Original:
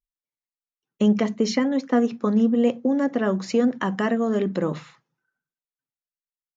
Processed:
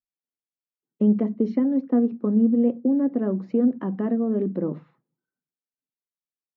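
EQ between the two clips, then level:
resonant band-pass 270 Hz, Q 1.2
high-frequency loss of the air 120 metres
+1.5 dB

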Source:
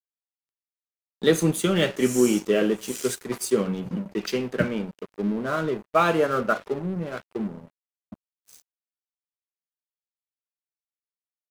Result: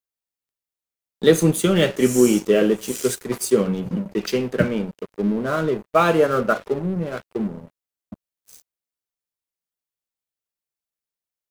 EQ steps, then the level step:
low-shelf EQ 170 Hz +5.5 dB
parametric band 490 Hz +3 dB 0.77 octaves
high-shelf EQ 8,100 Hz +4 dB
+2.0 dB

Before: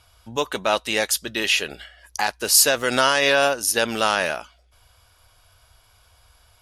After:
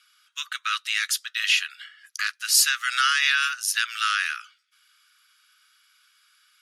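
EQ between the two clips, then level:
Butterworth high-pass 1,200 Hz 96 dB per octave
high-shelf EQ 8,700 Hz −8 dB
0.0 dB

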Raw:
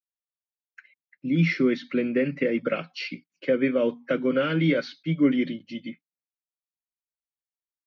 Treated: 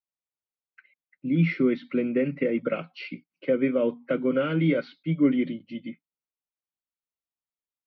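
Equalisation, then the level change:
high-frequency loss of the air 300 metres
notch filter 1,700 Hz, Q 6.2
0.0 dB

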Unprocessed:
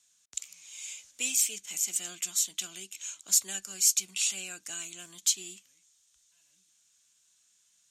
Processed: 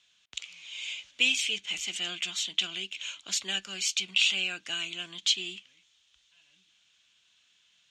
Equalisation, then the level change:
low-pass with resonance 3,100 Hz, resonance Q 2.7
+5.0 dB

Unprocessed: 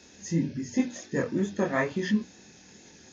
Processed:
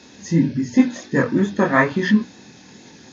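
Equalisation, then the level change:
parametric band 270 Hz +4 dB 0.62 octaves
dynamic equaliser 1,500 Hz, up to +6 dB, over −47 dBFS, Q 1.9
graphic EQ with 10 bands 125 Hz +10 dB, 250 Hz +5 dB, 500 Hz +4 dB, 1,000 Hz +10 dB, 2,000 Hz +4 dB, 4,000 Hz +8 dB
0.0 dB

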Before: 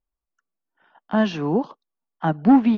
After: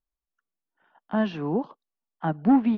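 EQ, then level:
high-frequency loss of the air 170 metres
−4.5 dB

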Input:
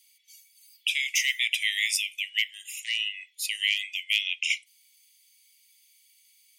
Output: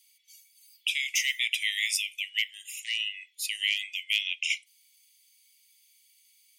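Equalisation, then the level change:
high-pass filter 1,500 Hz
−1.5 dB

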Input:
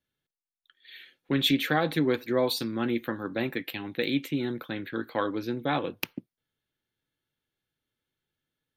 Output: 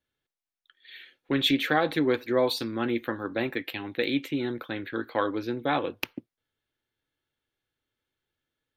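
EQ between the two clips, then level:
parametric band 170 Hz −8 dB 0.89 octaves
high-shelf EQ 6,100 Hz −8.5 dB
+2.5 dB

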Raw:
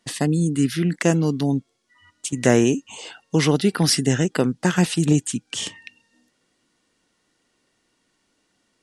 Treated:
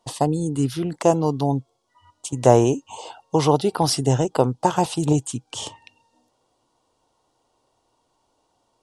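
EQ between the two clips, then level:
drawn EQ curve 130 Hz 0 dB, 180 Hz −12 dB, 920 Hz +8 dB, 1,800 Hz −18 dB, 3,200 Hz −7 dB
+3.5 dB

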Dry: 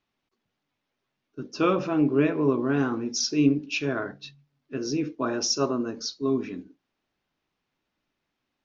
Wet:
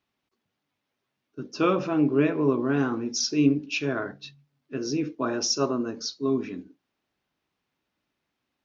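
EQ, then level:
high-pass filter 43 Hz
0.0 dB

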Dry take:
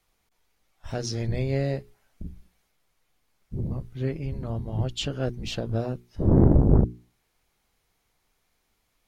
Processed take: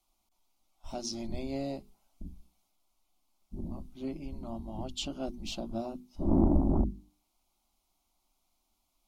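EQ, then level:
mains-hum notches 50/100/150/200/250/300 Hz
phaser with its sweep stopped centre 460 Hz, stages 6
−2.5 dB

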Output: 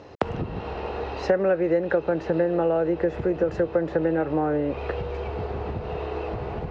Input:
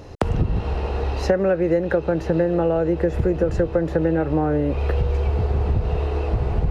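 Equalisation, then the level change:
high-pass filter 340 Hz 6 dB per octave
high-frequency loss of the air 140 metres
0.0 dB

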